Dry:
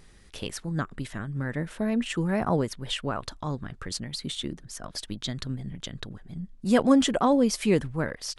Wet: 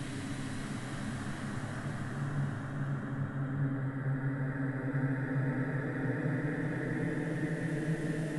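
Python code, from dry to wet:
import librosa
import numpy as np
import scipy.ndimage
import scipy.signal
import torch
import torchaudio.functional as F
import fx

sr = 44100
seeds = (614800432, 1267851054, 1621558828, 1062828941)

y = fx.spec_quant(x, sr, step_db=15)
y = fx.paulstretch(y, sr, seeds[0], factor=14.0, window_s=0.5, from_s=1.07)
y = y * librosa.db_to_amplitude(-2.5)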